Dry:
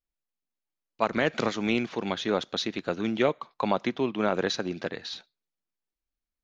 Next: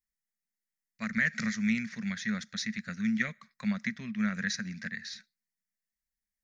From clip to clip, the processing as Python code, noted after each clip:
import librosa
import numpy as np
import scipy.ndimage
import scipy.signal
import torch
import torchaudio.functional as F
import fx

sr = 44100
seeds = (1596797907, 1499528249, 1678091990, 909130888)

y = fx.curve_eq(x, sr, hz=(140.0, 220.0, 310.0, 600.0, 880.0, 1900.0, 3000.0, 5300.0), db=(0, 9, -26, -16, -23, 13, -10, 7))
y = y * 10.0 ** (-5.5 / 20.0)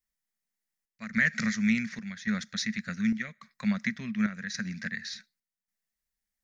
y = fx.chopper(x, sr, hz=0.88, depth_pct=60, duty_pct=75)
y = y * 10.0 ** (3.0 / 20.0)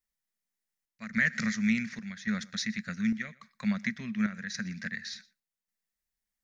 y = x + 10.0 ** (-23.0 / 20.0) * np.pad(x, (int(119 * sr / 1000.0), 0))[:len(x)]
y = y * 10.0 ** (-1.5 / 20.0)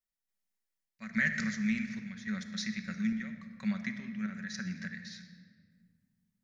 y = fx.tremolo_random(x, sr, seeds[0], hz=3.5, depth_pct=55)
y = fx.room_shoebox(y, sr, seeds[1], volume_m3=2700.0, walls='mixed', distance_m=1.1)
y = y * 10.0 ** (-3.0 / 20.0)